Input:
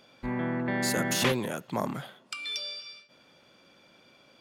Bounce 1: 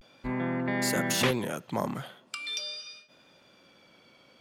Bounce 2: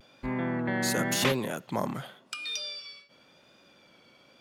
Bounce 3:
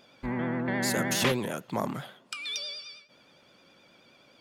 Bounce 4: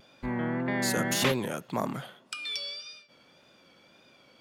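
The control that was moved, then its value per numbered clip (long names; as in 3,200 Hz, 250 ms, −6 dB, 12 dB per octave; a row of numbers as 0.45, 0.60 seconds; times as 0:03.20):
pitch vibrato, speed: 0.42, 0.92, 9.5, 1.8 Hertz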